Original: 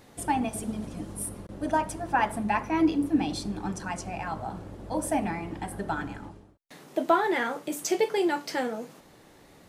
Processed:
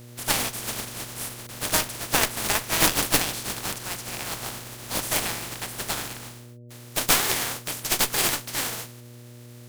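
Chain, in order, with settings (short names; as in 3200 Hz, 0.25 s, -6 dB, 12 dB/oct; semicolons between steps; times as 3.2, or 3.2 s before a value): spectral contrast lowered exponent 0.19; buzz 120 Hz, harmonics 5, -46 dBFS -7 dB/oct; added harmonics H 4 -8 dB, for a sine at -6 dBFS; gain +1 dB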